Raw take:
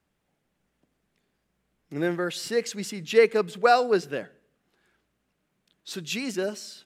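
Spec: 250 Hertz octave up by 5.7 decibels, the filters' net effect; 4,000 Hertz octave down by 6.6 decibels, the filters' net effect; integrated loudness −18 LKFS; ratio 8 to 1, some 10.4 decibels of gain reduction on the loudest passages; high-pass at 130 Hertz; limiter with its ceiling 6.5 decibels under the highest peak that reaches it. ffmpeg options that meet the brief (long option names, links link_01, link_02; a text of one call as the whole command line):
ffmpeg -i in.wav -af "highpass=130,equalizer=frequency=250:width_type=o:gain=8.5,equalizer=frequency=4000:width_type=o:gain=-8.5,acompressor=threshold=-22dB:ratio=8,volume=13.5dB,alimiter=limit=-7.5dB:level=0:latency=1" out.wav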